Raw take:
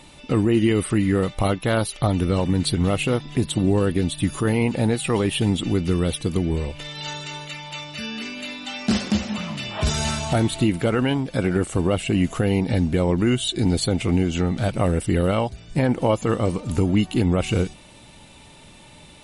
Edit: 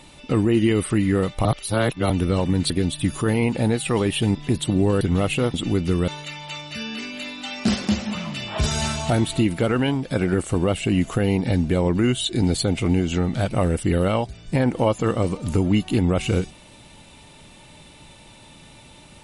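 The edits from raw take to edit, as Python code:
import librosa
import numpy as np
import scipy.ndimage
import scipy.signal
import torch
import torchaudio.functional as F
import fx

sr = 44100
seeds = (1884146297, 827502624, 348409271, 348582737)

y = fx.edit(x, sr, fx.reverse_span(start_s=1.45, length_s=0.65),
    fx.swap(start_s=2.7, length_s=0.53, other_s=3.89, other_length_s=1.65),
    fx.cut(start_s=6.08, length_s=1.23), tone=tone)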